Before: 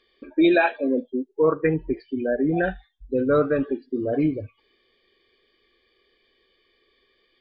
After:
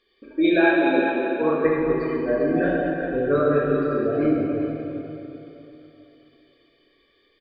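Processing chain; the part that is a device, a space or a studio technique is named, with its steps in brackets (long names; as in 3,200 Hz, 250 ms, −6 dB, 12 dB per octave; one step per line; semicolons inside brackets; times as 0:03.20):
cave (single-tap delay 395 ms −9.5 dB; convolution reverb RT60 3.5 s, pre-delay 9 ms, DRR −5 dB)
level −4.5 dB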